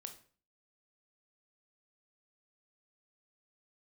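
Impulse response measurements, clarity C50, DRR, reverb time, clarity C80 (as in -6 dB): 11.0 dB, 6.0 dB, 0.45 s, 16.0 dB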